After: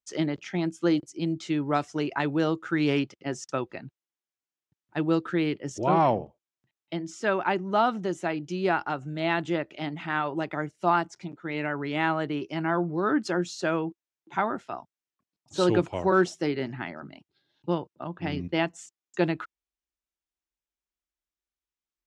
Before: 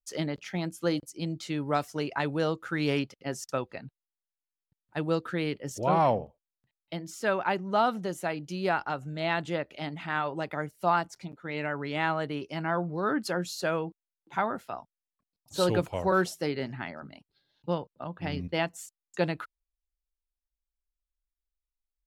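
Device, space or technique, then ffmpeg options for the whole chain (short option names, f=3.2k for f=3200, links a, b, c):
car door speaker: -af "highpass=90,equalizer=f=340:t=q:w=4:g=7,equalizer=f=510:t=q:w=4:g=-4,equalizer=f=4.4k:t=q:w=4:g=-5,lowpass=f=7.4k:w=0.5412,lowpass=f=7.4k:w=1.3066,volume=2dB"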